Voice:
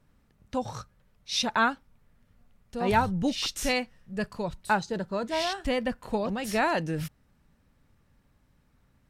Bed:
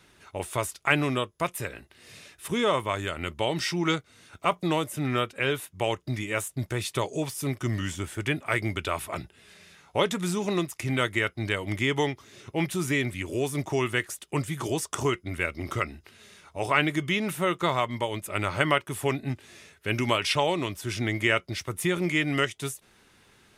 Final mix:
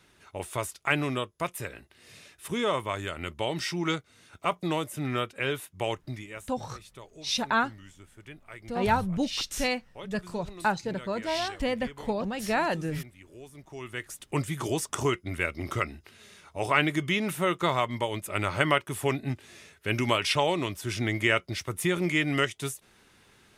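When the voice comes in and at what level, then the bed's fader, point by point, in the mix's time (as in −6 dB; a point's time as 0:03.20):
5.95 s, −1.0 dB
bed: 0:05.99 −3 dB
0:06.58 −19 dB
0:13.63 −19 dB
0:14.28 −0.5 dB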